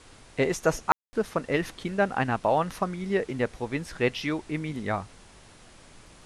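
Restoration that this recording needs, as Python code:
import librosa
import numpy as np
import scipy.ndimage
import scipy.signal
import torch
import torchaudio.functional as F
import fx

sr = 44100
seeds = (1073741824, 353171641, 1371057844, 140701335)

y = fx.fix_ambience(x, sr, seeds[0], print_start_s=5.24, print_end_s=5.74, start_s=0.92, end_s=1.13)
y = fx.noise_reduce(y, sr, print_start_s=5.24, print_end_s=5.74, reduce_db=20.0)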